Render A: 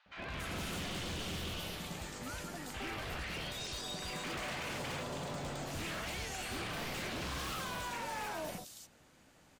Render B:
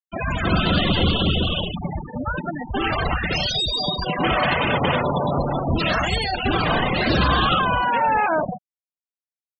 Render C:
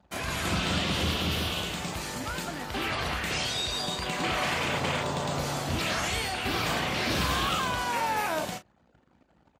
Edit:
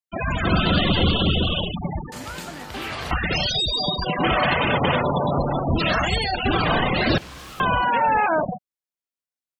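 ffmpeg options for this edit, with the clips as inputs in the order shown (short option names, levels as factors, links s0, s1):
-filter_complex "[1:a]asplit=3[s0][s1][s2];[s0]atrim=end=2.122[s3];[2:a]atrim=start=2.118:end=3.112[s4];[s1]atrim=start=3.108:end=7.182[s5];[0:a]atrim=start=7.178:end=7.602[s6];[s2]atrim=start=7.598[s7];[s3][s4]acrossfade=d=0.004:c1=hsin:c2=hsin[s8];[s8][s5]acrossfade=d=0.004:c1=hsin:c2=hsin[s9];[s9][s6]acrossfade=d=0.004:c1=hsin:c2=hsin[s10];[s10][s7]acrossfade=d=0.004:c1=hsin:c2=hsin"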